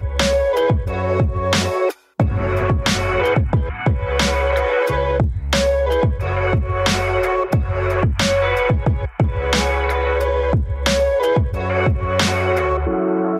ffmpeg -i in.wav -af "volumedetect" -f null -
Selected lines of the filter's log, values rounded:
mean_volume: -17.7 dB
max_volume: -2.5 dB